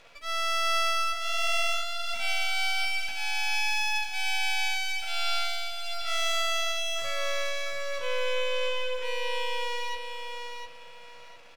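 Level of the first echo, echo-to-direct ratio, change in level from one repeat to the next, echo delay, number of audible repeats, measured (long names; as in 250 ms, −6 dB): −6.0 dB, −5.5 dB, −11.5 dB, 705 ms, 3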